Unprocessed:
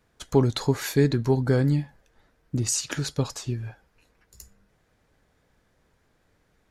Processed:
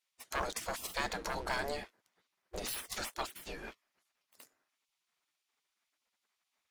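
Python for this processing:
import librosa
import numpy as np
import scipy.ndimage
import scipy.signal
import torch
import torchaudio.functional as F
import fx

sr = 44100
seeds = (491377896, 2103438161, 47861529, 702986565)

y = fx.leveller(x, sr, passes=2)
y = fx.spec_gate(y, sr, threshold_db=-20, keep='weak')
y = y * librosa.db_to_amplitude(-3.5)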